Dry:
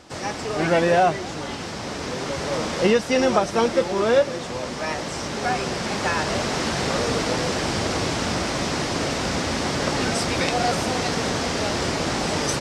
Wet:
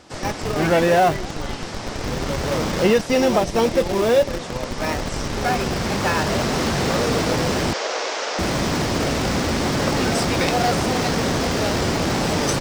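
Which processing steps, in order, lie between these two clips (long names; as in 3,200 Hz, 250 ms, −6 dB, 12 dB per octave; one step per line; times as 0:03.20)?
0:03.06–0:04.29: parametric band 1,400 Hz −7.5 dB 0.56 octaves
in parallel at −4 dB: comparator with hysteresis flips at −22 dBFS
0:07.73–0:08.39: on the sum: elliptic band-pass filter 480–6,600 Hz, stop band 60 dB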